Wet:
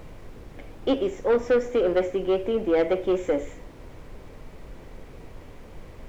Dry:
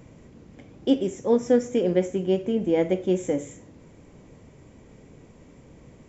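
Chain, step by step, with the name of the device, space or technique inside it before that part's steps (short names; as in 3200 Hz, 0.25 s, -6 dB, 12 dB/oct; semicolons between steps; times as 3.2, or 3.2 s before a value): aircraft cabin announcement (BPF 420–3100 Hz; soft clip -21.5 dBFS, distortion -12 dB; brown noise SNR 14 dB); gain +6.5 dB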